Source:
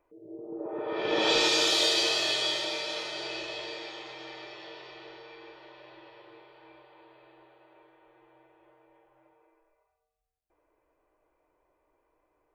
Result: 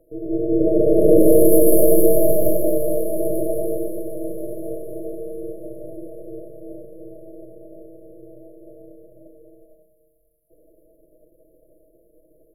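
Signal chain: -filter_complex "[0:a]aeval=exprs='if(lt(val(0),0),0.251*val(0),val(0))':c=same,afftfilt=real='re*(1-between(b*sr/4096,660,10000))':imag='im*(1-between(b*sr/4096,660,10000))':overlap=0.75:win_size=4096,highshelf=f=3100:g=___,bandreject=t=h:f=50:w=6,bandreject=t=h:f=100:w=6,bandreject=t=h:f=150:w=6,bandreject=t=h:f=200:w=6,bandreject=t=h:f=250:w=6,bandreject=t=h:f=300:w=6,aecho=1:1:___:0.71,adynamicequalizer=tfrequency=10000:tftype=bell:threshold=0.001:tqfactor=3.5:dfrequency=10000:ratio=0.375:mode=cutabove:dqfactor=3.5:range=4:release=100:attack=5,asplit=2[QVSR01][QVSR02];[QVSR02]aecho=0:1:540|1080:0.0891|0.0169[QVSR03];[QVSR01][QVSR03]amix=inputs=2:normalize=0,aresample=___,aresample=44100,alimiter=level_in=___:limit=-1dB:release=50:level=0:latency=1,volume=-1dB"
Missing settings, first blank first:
6.5, 6.2, 32000, 21dB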